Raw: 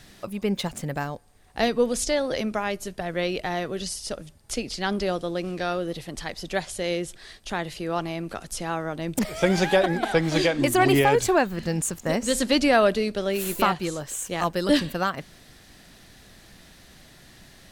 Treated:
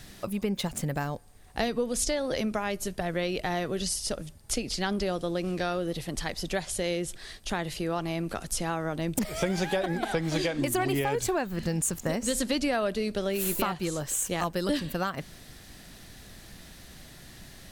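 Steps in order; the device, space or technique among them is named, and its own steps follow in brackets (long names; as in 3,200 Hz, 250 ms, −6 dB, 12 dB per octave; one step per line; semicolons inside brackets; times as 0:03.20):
ASMR close-microphone chain (low-shelf EQ 190 Hz +4.5 dB; downward compressor 4 to 1, threshold −26 dBFS, peak gain reduction 10.5 dB; high-shelf EQ 8,200 Hz +6 dB)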